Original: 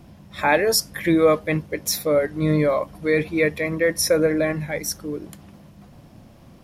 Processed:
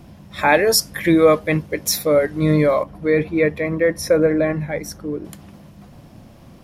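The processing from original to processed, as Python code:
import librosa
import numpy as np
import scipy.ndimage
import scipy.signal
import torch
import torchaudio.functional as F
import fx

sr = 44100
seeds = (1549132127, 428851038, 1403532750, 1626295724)

y = fx.high_shelf(x, sr, hz=2800.0, db=-12.0, at=(2.83, 5.25))
y = y * 10.0 ** (3.5 / 20.0)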